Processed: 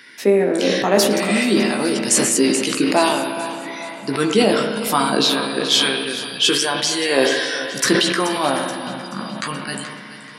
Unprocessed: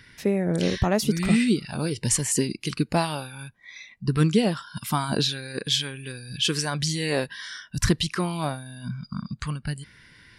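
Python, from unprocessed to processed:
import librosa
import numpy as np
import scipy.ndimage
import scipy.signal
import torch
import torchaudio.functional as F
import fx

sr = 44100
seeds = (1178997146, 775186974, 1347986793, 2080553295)

p1 = scipy.signal.sosfilt(scipy.signal.butter(4, 250.0, 'highpass', fs=sr, output='sos'), x)
p2 = fx.rider(p1, sr, range_db=10, speed_s=0.5)
p3 = p1 + (p2 * librosa.db_to_amplitude(2.5))
p4 = fx.doubler(p3, sr, ms=15.0, db=-5.5)
p5 = p4 + fx.echo_feedback(p4, sr, ms=429, feedback_pct=49, wet_db=-14, dry=0)
p6 = fx.rev_spring(p5, sr, rt60_s=3.5, pass_ms=(33, 43), chirp_ms=25, drr_db=5.5)
p7 = fx.sustainer(p6, sr, db_per_s=37.0)
y = p7 * librosa.db_to_amplitude(-1.0)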